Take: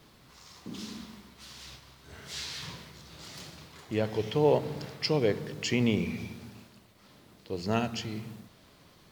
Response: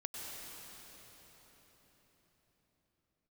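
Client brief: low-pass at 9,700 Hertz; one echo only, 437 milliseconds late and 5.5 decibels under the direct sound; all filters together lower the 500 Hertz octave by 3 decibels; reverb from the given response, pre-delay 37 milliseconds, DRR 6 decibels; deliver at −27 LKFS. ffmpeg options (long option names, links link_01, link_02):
-filter_complex "[0:a]lowpass=9700,equalizer=frequency=500:width_type=o:gain=-3.5,aecho=1:1:437:0.531,asplit=2[link_01][link_02];[1:a]atrim=start_sample=2205,adelay=37[link_03];[link_02][link_03]afir=irnorm=-1:irlink=0,volume=-6dB[link_04];[link_01][link_04]amix=inputs=2:normalize=0,volume=5dB"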